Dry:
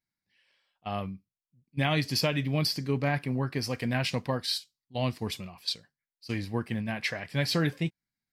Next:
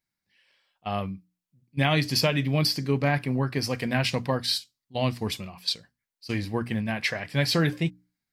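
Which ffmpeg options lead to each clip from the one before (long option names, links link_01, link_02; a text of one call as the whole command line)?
ffmpeg -i in.wav -af "bandreject=frequency=60:width_type=h:width=6,bandreject=frequency=120:width_type=h:width=6,bandreject=frequency=180:width_type=h:width=6,bandreject=frequency=240:width_type=h:width=6,bandreject=frequency=300:width_type=h:width=6,volume=4dB" out.wav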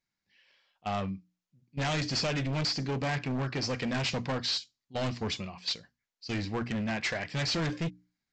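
ffmpeg -i in.wav -af "aresample=16000,asoftclip=type=hard:threshold=-27.5dB,aresample=44100,equalizer=frequency=110:width=1.4:gain=-2.5" out.wav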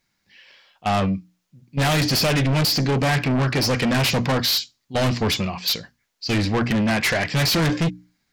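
ffmpeg -i in.wav -af "aeval=exprs='0.0794*sin(PI/2*2.24*val(0)/0.0794)':channel_layout=same,volume=4.5dB" out.wav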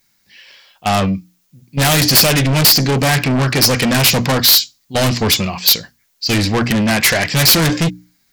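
ffmpeg -i in.wav -af "aemphasis=mode=production:type=50kf,aeval=exprs='(mod(2*val(0)+1,2)-1)/2':channel_layout=same,volume=5dB" out.wav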